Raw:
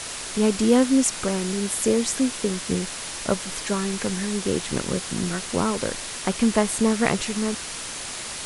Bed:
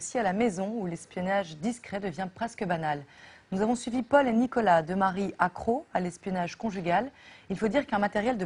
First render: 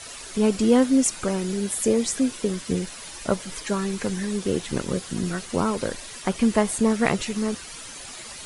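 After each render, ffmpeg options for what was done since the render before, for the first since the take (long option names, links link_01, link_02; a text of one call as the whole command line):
ffmpeg -i in.wav -af "afftdn=noise_reduction=10:noise_floor=-34" out.wav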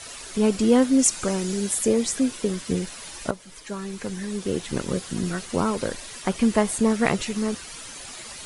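ffmpeg -i in.wav -filter_complex "[0:a]asettb=1/sr,asplit=3[link_01][link_02][link_03];[link_01]atrim=end=0.994[link_04];[link_02]atrim=start=0.99:end=1.79,asetpts=PTS-STARTPTS,afade=type=in:duration=0.004:curve=qsin,afade=type=out:start_time=0.796:duration=0.004:curve=qsin,equalizer=frequency=6700:width_type=o:width=1.2:gain=5[link_05];[link_03]atrim=start=1.786[link_06];[link_04][link_05]acrossfade=duration=0.004:curve1=hsin:curve2=qsin[link_07];[link_07][link_06]acrossfade=duration=0.004:curve1=qsin:curve2=hsin,asplit=2[link_08][link_09];[link_08]atrim=end=3.31,asetpts=PTS-STARTPTS,afade=type=out:start_time=3.306:duration=0.004:curve=hsin:silence=0.223872[link_10];[link_09]atrim=start=3.31,asetpts=PTS-STARTPTS,afade=type=in:duration=1.59:silence=0.223872[link_11];[link_10][link_11]concat=n=2:v=0:a=1" out.wav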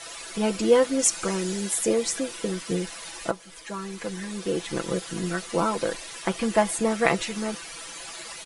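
ffmpeg -i in.wav -af "bass=frequency=250:gain=-9,treble=frequency=4000:gain=-3,aecho=1:1:6:0.69" out.wav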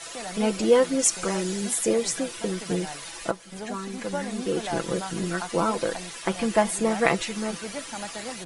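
ffmpeg -i in.wav -i bed.wav -filter_complex "[1:a]volume=-10dB[link_01];[0:a][link_01]amix=inputs=2:normalize=0" out.wav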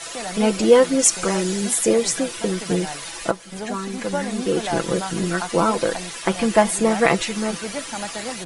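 ffmpeg -i in.wav -af "volume=5.5dB,alimiter=limit=-2dB:level=0:latency=1" out.wav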